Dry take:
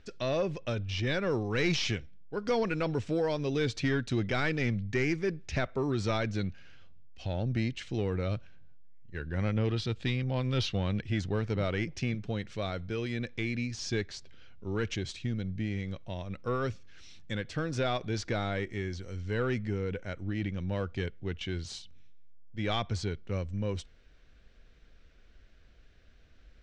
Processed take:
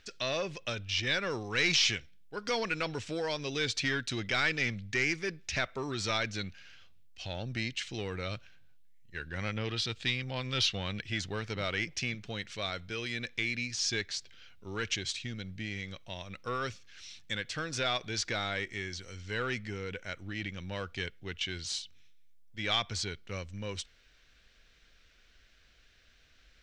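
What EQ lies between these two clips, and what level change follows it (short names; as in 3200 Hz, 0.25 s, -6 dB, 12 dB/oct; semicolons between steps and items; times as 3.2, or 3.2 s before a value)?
tilt shelf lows -8 dB, about 1100 Hz; 0.0 dB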